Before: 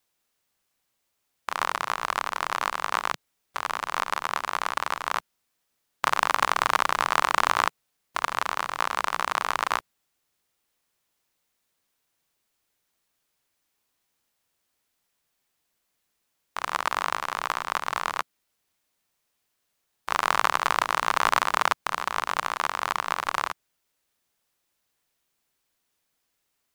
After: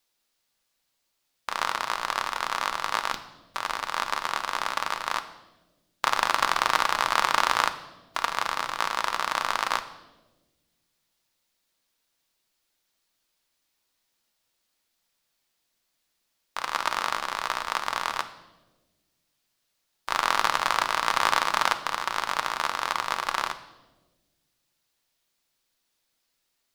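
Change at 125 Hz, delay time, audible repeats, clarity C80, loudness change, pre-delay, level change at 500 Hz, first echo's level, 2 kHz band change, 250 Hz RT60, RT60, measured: −2.5 dB, no echo audible, no echo audible, 15.5 dB, 0.0 dB, 3 ms, −0.5 dB, no echo audible, 0.0 dB, 1.9 s, 1.3 s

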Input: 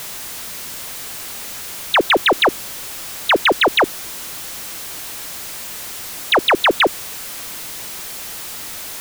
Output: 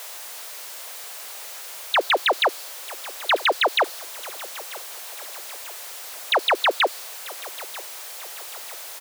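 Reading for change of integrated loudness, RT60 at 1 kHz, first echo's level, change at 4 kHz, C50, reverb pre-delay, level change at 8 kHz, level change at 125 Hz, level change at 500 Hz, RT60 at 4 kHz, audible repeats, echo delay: −6.0 dB, no reverb audible, −19.0 dB, −5.0 dB, no reverb audible, no reverb audible, −6.5 dB, below −35 dB, −6.0 dB, no reverb audible, 3, 940 ms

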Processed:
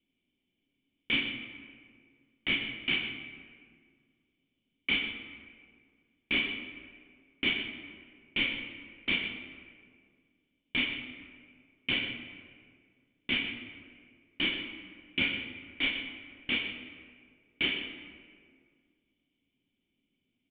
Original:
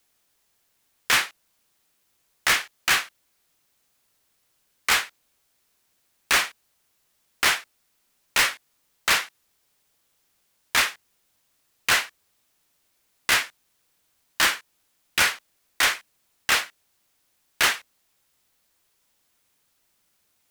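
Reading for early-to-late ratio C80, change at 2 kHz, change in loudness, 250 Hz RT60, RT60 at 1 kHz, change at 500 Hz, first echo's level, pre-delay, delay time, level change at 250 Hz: 6.0 dB, −8.5 dB, −9.0 dB, 2.2 s, 1.8 s, −8.0 dB, −10.5 dB, 5 ms, 125 ms, +6.0 dB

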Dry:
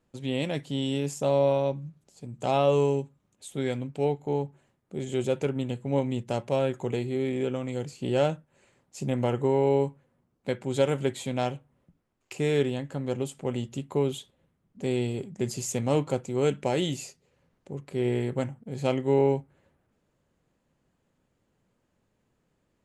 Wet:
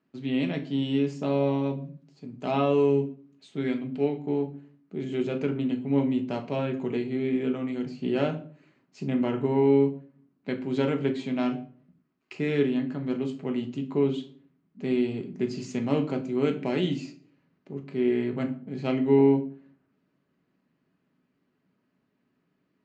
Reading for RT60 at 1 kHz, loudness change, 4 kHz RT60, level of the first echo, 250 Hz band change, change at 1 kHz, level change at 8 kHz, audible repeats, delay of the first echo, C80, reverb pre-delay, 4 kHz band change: 0.45 s, +1.0 dB, 0.35 s, no echo audible, +5.0 dB, −3.0 dB, below −10 dB, no echo audible, no echo audible, 18.0 dB, 5 ms, −3.0 dB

